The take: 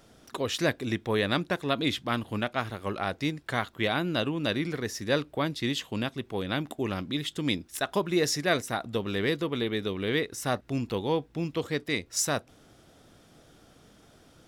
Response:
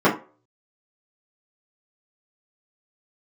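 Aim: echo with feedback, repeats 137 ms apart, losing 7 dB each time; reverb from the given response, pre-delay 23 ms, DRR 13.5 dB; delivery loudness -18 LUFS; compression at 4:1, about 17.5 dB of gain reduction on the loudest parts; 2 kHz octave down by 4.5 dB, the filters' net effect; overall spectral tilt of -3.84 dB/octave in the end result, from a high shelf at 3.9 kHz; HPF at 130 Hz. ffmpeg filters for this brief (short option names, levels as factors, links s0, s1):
-filter_complex "[0:a]highpass=130,equalizer=f=2000:t=o:g=-7.5,highshelf=f=3900:g=6.5,acompressor=threshold=0.00708:ratio=4,aecho=1:1:137|274|411|548|685:0.447|0.201|0.0905|0.0407|0.0183,asplit=2[s0][s1];[1:a]atrim=start_sample=2205,adelay=23[s2];[s1][s2]afir=irnorm=-1:irlink=0,volume=0.0178[s3];[s0][s3]amix=inputs=2:normalize=0,volume=17.8"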